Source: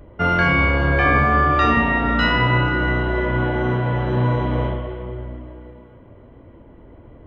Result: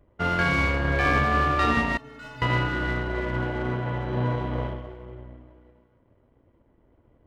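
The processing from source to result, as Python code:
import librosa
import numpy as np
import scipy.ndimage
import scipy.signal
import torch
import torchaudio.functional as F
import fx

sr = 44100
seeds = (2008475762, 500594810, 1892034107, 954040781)

y = fx.power_curve(x, sr, exponent=1.4)
y = fx.stiff_resonator(y, sr, f0_hz=130.0, decay_s=0.56, stiffness=0.03, at=(1.97, 2.42))
y = y * 10.0 ** (-3.0 / 20.0)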